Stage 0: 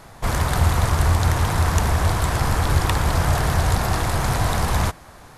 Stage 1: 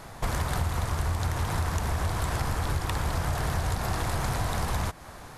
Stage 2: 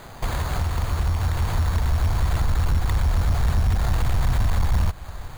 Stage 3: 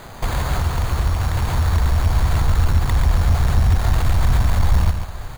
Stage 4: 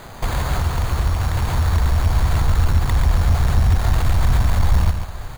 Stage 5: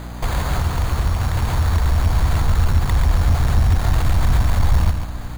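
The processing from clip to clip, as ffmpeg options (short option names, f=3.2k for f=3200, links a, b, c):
-af "acompressor=threshold=-25dB:ratio=6"
-af "asubboost=boost=6.5:cutoff=93,acrusher=samples=8:mix=1:aa=0.000001,asoftclip=type=tanh:threshold=-16.5dB,volume=2.5dB"
-af "aecho=1:1:140:0.447,volume=3.5dB"
-af anull
-af "aeval=exprs='val(0)+0.0282*(sin(2*PI*60*n/s)+sin(2*PI*2*60*n/s)/2+sin(2*PI*3*60*n/s)/3+sin(2*PI*4*60*n/s)/4+sin(2*PI*5*60*n/s)/5)':c=same"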